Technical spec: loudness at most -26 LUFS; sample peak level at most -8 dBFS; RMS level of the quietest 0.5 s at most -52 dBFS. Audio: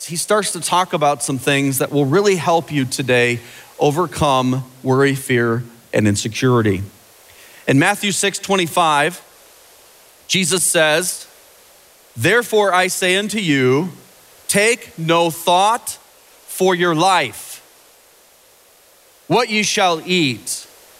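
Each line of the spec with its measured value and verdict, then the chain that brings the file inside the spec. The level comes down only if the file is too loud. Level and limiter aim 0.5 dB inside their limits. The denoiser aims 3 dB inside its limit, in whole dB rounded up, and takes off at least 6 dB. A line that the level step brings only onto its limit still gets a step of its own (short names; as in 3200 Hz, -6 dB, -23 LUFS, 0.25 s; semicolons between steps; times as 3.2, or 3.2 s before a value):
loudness -16.5 LUFS: fail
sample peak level -4.5 dBFS: fail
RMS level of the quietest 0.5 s -50 dBFS: fail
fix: gain -10 dB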